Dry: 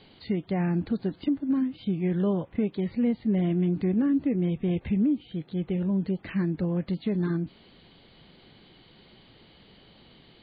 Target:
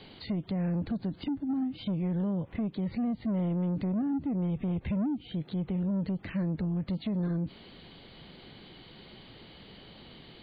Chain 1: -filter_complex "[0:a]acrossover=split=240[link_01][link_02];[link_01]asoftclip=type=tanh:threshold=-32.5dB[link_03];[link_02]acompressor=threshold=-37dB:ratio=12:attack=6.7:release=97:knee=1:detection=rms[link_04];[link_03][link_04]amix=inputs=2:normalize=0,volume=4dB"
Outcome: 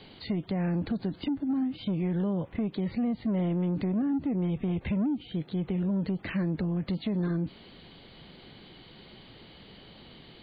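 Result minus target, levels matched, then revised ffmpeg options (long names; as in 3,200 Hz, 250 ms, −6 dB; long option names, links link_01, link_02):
downward compressor: peak gain reduction −7 dB
-filter_complex "[0:a]acrossover=split=240[link_01][link_02];[link_01]asoftclip=type=tanh:threshold=-32.5dB[link_03];[link_02]acompressor=threshold=-44.5dB:ratio=12:attack=6.7:release=97:knee=1:detection=rms[link_04];[link_03][link_04]amix=inputs=2:normalize=0,volume=4dB"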